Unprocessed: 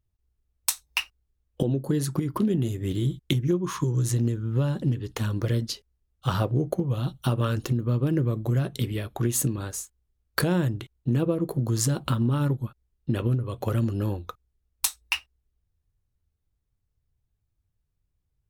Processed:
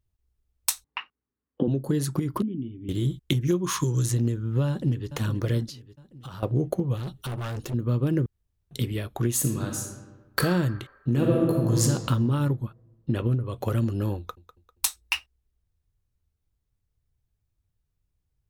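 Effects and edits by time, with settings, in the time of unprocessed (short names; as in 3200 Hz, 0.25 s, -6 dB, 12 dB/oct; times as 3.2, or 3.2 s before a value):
0.84–1.68 speaker cabinet 190–2600 Hz, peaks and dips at 250 Hz +9 dB, 650 Hz -7 dB, 1100 Hz +4 dB, 2500 Hz -8 dB
2.42–2.89 vocal tract filter i
3.41–4.06 high shelf 2000 Hz +9.5 dB
4.68–5.09 echo throw 0.43 s, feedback 50%, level -11 dB
5.67–6.43 compressor, threshold -37 dBFS
6.96–7.74 hard clip -29.5 dBFS
8.26–8.71 room tone
9.38–10.39 reverb throw, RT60 1.3 s, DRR 2 dB
11.1–11.82 reverb throw, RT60 1.7 s, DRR -1.5 dB
12.53–13.53 high shelf 5200 Hz -5.5 dB
14.17–15.01 feedback echo 0.198 s, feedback 40%, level -15.5 dB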